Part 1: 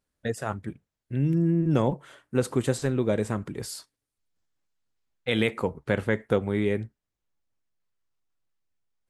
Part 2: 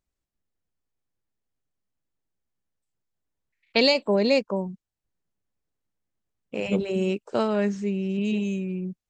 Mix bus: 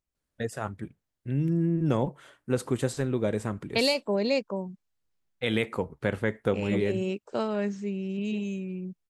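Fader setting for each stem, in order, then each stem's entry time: −2.5, −5.0 decibels; 0.15, 0.00 seconds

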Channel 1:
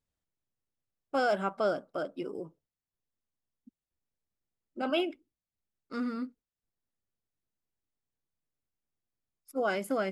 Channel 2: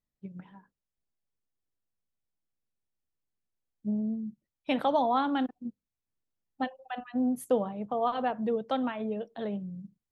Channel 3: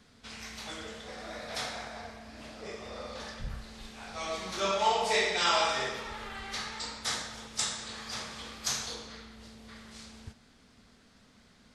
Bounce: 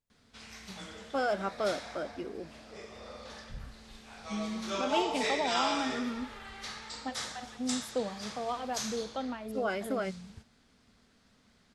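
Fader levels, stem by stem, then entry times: −2.5, −6.5, −5.0 decibels; 0.00, 0.45, 0.10 seconds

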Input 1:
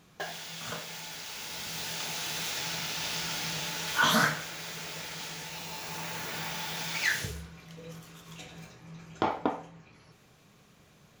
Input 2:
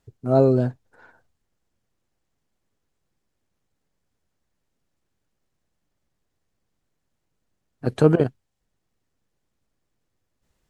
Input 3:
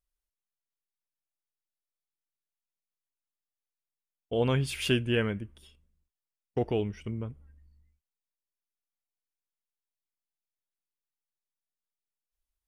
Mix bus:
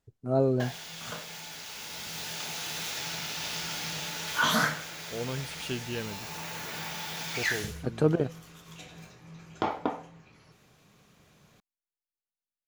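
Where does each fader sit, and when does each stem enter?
−1.0, −8.0, −8.5 decibels; 0.40, 0.00, 0.80 seconds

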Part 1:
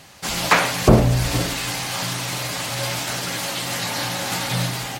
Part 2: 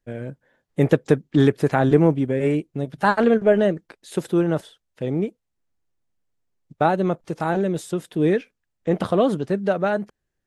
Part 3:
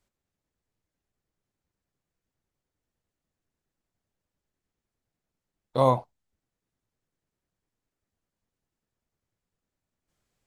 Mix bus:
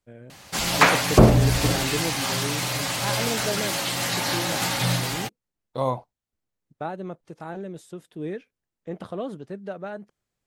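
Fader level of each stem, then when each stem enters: −0.5, −13.0, −4.0 decibels; 0.30, 0.00, 0.00 seconds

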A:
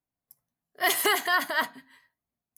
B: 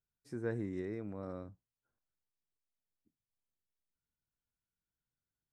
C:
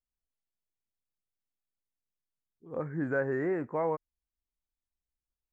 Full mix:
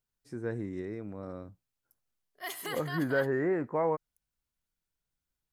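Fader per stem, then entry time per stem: −15.0, +2.0, +1.5 decibels; 1.60, 0.00, 0.00 seconds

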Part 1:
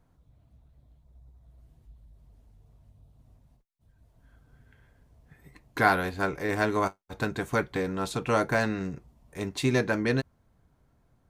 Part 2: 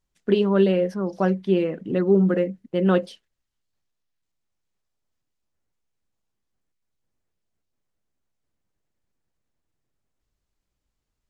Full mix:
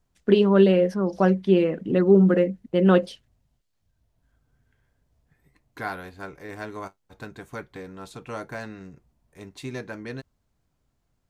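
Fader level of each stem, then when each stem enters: −9.5, +2.0 decibels; 0.00, 0.00 seconds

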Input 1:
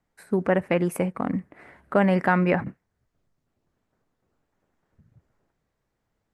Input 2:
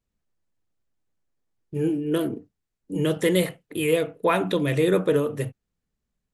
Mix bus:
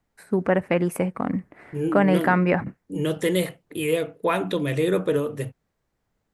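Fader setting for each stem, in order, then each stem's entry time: +1.0, −1.5 decibels; 0.00, 0.00 seconds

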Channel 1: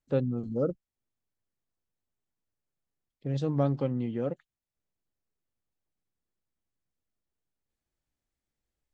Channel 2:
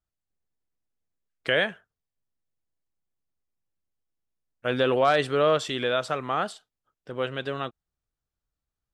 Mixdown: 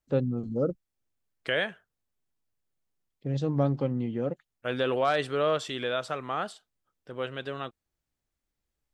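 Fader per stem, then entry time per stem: +1.0, −4.5 decibels; 0.00, 0.00 seconds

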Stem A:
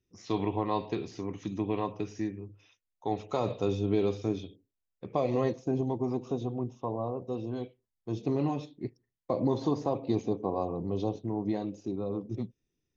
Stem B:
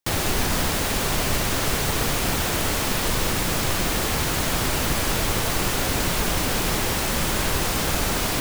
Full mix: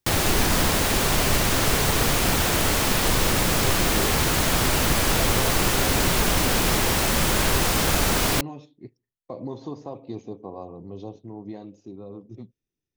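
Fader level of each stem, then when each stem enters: −6.0, +2.0 decibels; 0.00, 0.00 seconds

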